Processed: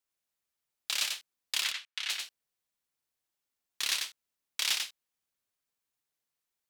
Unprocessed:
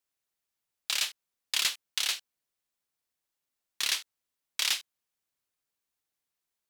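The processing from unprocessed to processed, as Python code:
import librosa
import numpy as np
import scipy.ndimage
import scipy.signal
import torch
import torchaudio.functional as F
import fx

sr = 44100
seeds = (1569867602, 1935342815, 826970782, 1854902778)

y = fx.bandpass_q(x, sr, hz=2000.0, q=1.0, at=(1.62, 2.1))
y = y + 10.0 ** (-4.0 / 20.0) * np.pad(y, (int(94 * sr / 1000.0), 0))[:len(y)]
y = y * 10.0 ** (-2.5 / 20.0)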